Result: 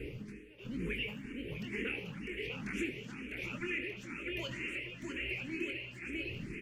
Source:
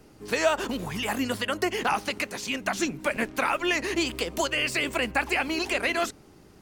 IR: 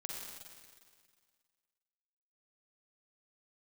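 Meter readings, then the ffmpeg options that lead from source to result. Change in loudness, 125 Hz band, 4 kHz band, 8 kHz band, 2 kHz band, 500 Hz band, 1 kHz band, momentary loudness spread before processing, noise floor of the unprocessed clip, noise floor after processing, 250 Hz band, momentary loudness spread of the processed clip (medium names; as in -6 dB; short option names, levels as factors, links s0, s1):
-12.5 dB, -3.5 dB, -14.5 dB, -23.0 dB, -11.5 dB, -15.5 dB, -26.5 dB, 5 LU, -53 dBFS, -50 dBFS, -10.0 dB, 6 LU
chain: -filter_complex "[0:a]firequalizer=gain_entry='entry(460,0);entry(720,-24);entry(2300,8);entry(4000,-16)':delay=0.05:min_phase=1,acompressor=threshold=0.00631:ratio=6,alimiter=level_in=6.68:limit=0.0631:level=0:latency=1,volume=0.15,aeval=exprs='val(0)+0.000891*(sin(2*PI*60*n/s)+sin(2*PI*2*60*n/s)/2+sin(2*PI*3*60*n/s)/3+sin(2*PI*4*60*n/s)/4+sin(2*PI*5*60*n/s)/5)':c=same,tremolo=f=1.1:d=1,aecho=1:1:650|1235|1762|2235|2662:0.631|0.398|0.251|0.158|0.1,asplit=2[s0][s1];[1:a]atrim=start_sample=2205,afade=t=out:st=0.35:d=0.01,atrim=end_sample=15876,adelay=24[s2];[s1][s2]afir=irnorm=-1:irlink=0,volume=0.668[s3];[s0][s3]amix=inputs=2:normalize=0,aresample=32000,aresample=44100,asplit=2[s4][s5];[s5]afreqshift=2.1[s6];[s4][s6]amix=inputs=2:normalize=1,volume=4.73"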